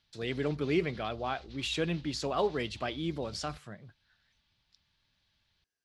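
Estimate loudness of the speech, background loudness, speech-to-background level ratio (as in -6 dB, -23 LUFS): -33.5 LUFS, -53.0 LUFS, 19.5 dB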